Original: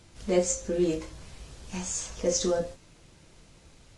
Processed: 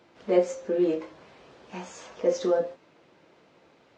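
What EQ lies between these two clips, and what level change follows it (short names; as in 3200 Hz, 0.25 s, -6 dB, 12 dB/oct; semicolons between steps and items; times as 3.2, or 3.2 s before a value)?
HPF 360 Hz 12 dB/oct; tape spacing loss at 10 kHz 34 dB; +6.5 dB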